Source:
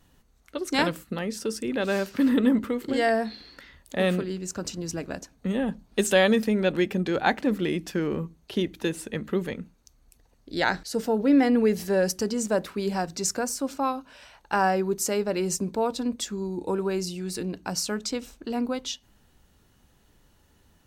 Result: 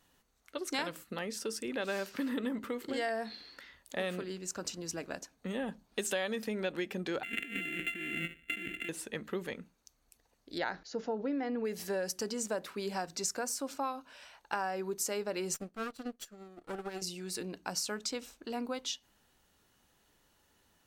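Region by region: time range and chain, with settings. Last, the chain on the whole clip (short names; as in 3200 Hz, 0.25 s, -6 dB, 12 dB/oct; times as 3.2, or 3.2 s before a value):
7.23–8.89 sample sorter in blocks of 64 samples + EQ curve 160 Hz 0 dB, 310 Hz +7 dB, 930 Hz -30 dB, 1700 Hz +7 dB, 2800 Hz +13 dB, 5100 Hz -27 dB, 7500 Hz -8 dB + negative-ratio compressor -32 dBFS
10.58–11.65 brick-wall FIR low-pass 7200 Hz + high shelf 2400 Hz -10 dB
15.54–17.02 minimum comb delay 0.68 ms + bell 940 Hz -9 dB 0.24 oct + upward expander 2.5:1, over -36 dBFS
whole clip: low shelf 340 Hz -8 dB; compressor 6:1, threshold -27 dBFS; low shelf 150 Hz -5 dB; gain -3.5 dB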